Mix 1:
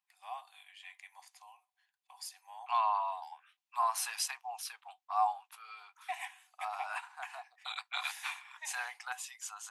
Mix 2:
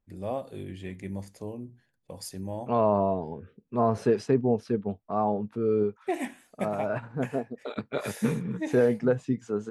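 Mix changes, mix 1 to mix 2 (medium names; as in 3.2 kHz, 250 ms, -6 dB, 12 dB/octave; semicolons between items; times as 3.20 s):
second voice: add tape spacing loss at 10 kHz 26 dB; master: remove rippled Chebyshev high-pass 730 Hz, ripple 6 dB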